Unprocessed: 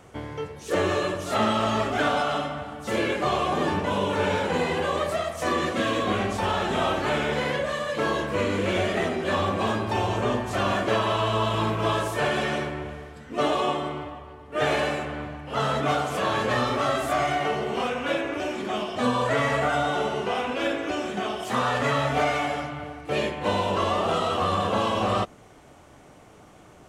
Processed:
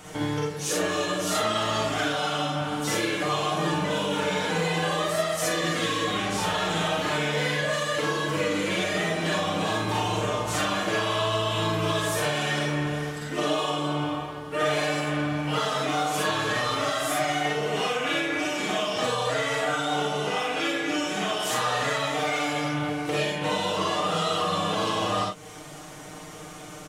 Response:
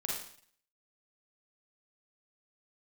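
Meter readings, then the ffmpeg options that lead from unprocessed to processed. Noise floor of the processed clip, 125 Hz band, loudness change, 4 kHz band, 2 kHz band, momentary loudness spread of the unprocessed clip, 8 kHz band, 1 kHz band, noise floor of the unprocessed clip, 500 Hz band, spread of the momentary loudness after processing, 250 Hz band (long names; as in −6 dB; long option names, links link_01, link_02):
−41 dBFS, 0.0 dB, −0.5 dB, +4.0 dB, +1.0 dB, 6 LU, +8.0 dB, −2.0 dB, −50 dBFS, −2.0 dB, 3 LU, −0.5 dB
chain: -filter_complex "[0:a]highshelf=frequency=2200:gain=10,aecho=1:1:6.5:0.79,acompressor=threshold=-29dB:ratio=6[link_01];[1:a]atrim=start_sample=2205,atrim=end_sample=4410[link_02];[link_01][link_02]afir=irnorm=-1:irlink=0,volume=3dB"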